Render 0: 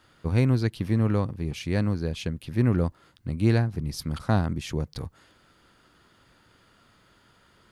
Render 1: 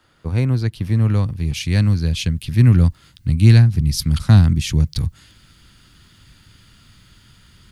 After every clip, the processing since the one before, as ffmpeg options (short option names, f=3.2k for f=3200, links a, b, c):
-filter_complex "[0:a]asubboost=boost=7.5:cutoff=180,acrossover=split=160|2200[a][b][c];[c]dynaudnorm=f=770:g=3:m=12dB[d];[a][b][d]amix=inputs=3:normalize=0,volume=1dB"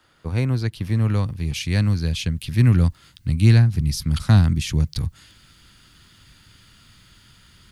-filter_complex "[0:a]lowshelf=f=420:g=-4,acrossover=split=1800[a][b];[b]alimiter=limit=-19dB:level=0:latency=1:release=194[c];[a][c]amix=inputs=2:normalize=0"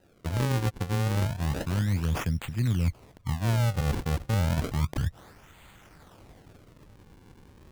-af "areverse,acompressor=threshold=-22dB:ratio=6,areverse,acrusher=samples=39:mix=1:aa=0.000001:lfo=1:lforange=62.4:lforate=0.31,volume=-1dB"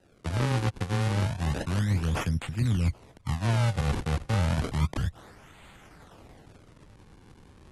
-filter_complex "[0:a]acrossover=split=120|3100[a][b][c];[c]asoftclip=type=hard:threshold=-31dB[d];[a][b][d]amix=inputs=3:normalize=0" -ar 44100 -c:a aac -b:a 32k